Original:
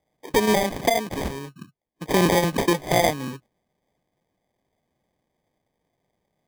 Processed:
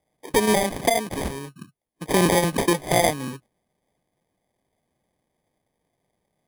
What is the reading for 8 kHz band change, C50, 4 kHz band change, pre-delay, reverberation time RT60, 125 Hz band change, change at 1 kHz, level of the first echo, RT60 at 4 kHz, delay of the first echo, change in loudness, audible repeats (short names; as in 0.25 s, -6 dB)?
+3.5 dB, none, 0.0 dB, none, none, 0.0 dB, 0.0 dB, none, none, none, +0.5 dB, none